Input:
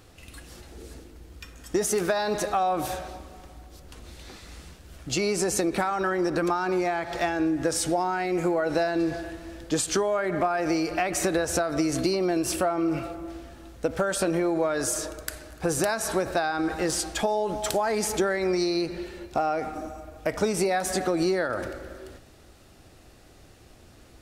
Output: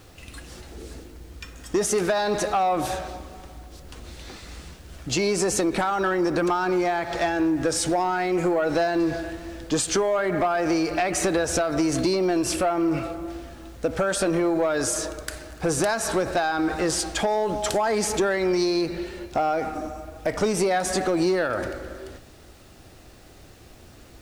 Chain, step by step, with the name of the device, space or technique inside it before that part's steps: compact cassette (soft clip -18.5 dBFS, distortion -18 dB; LPF 10000 Hz 12 dB/oct; wow and flutter 21 cents; white noise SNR 37 dB); gain +4 dB

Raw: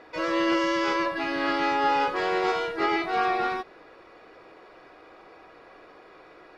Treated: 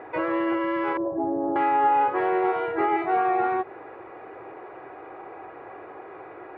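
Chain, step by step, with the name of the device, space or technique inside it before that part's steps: 0.97–1.56 inverse Chebyshev low-pass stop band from 4000 Hz, stop band 80 dB; bass amplifier (compressor 5:1, threshold -31 dBFS, peak gain reduction 10 dB; speaker cabinet 68–2300 Hz, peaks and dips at 110 Hz +9 dB, 200 Hz -5 dB, 380 Hz +7 dB, 810 Hz +9 dB); gain +5.5 dB

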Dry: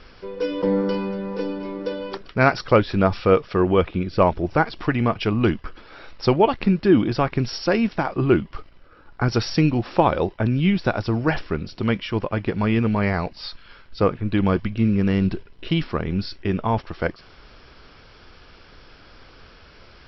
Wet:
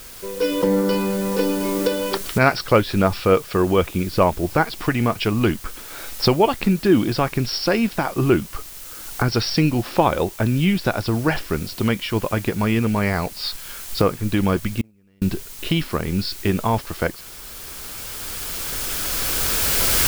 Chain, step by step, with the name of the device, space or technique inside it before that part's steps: cheap recorder with automatic gain (white noise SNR 25 dB; recorder AGC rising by 7.8 dB/s); 14.81–15.22 gate -12 dBFS, range -38 dB; high shelf 3400 Hz +7 dB

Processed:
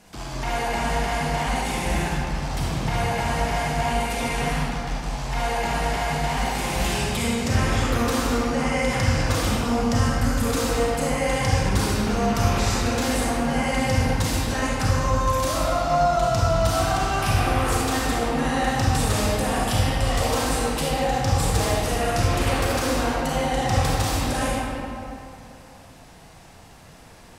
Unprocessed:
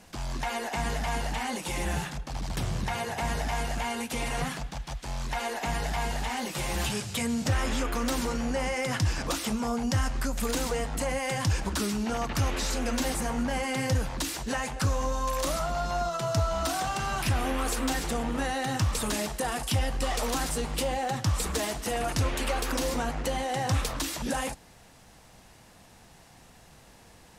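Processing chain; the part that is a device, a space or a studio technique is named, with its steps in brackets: stairwell (reverb RT60 2.8 s, pre-delay 30 ms, DRR -6 dB)

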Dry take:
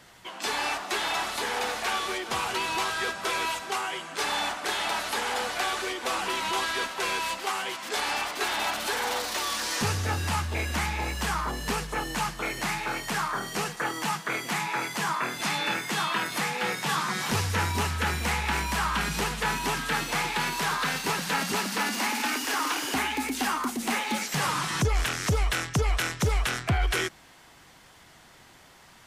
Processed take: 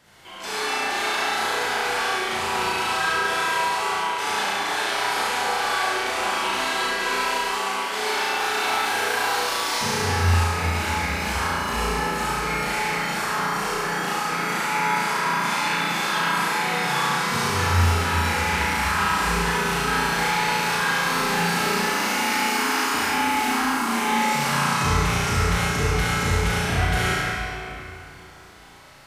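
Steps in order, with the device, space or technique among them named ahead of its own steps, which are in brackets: tunnel (flutter echo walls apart 6 m, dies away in 0.87 s; reverb RT60 3.0 s, pre-delay 38 ms, DRR -7 dB); gain -5.5 dB

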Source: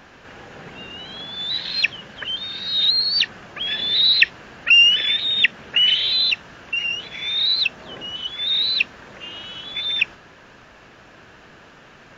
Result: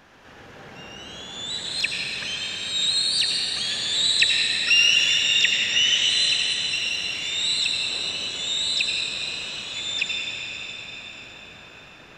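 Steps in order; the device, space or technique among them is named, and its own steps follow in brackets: shimmer-style reverb (harmoniser +12 st -11 dB; reverb RT60 6.2 s, pre-delay 70 ms, DRR -2.5 dB); gain -6.5 dB

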